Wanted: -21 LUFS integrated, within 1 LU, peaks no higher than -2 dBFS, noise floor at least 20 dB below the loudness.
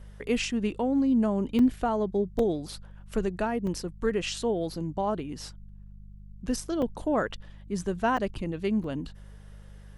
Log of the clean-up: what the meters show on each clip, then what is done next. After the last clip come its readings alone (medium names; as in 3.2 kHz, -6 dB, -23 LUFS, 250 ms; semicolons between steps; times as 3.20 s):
dropouts 6; longest dropout 3.1 ms; hum 50 Hz; highest harmonic 200 Hz; hum level -43 dBFS; loudness -29.0 LUFS; peak level -13.5 dBFS; loudness target -21.0 LUFS
-> interpolate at 1.59/2.39/3.67/6.82/8.17/8.84 s, 3.1 ms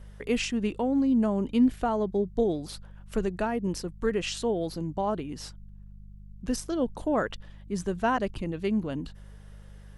dropouts 0; hum 50 Hz; highest harmonic 200 Hz; hum level -43 dBFS
-> de-hum 50 Hz, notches 4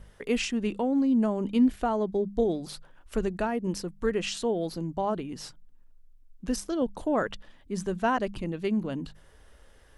hum not found; loudness -29.0 LUFS; peak level -14.0 dBFS; loudness target -21.0 LUFS
-> trim +8 dB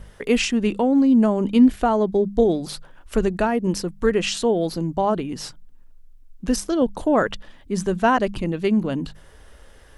loudness -21.0 LUFS; peak level -6.0 dBFS; noise floor -48 dBFS